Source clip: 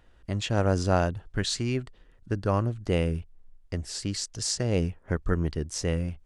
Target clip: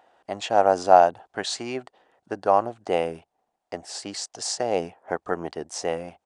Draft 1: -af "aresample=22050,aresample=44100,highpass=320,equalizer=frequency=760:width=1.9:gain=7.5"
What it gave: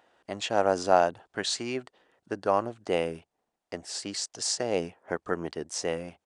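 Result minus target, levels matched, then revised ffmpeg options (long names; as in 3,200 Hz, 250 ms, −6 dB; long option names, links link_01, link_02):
1,000 Hz band −3.0 dB
-af "aresample=22050,aresample=44100,highpass=320,equalizer=frequency=760:width=1.9:gain=17"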